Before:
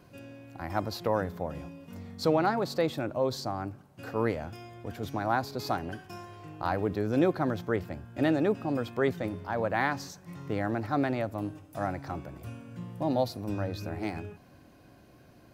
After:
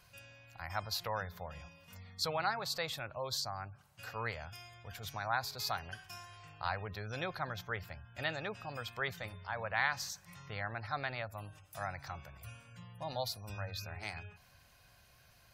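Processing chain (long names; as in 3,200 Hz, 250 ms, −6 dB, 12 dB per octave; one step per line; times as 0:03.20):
guitar amp tone stack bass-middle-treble 10-0-10
gate on every frequency bin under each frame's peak −30 dB strong
level +4 dB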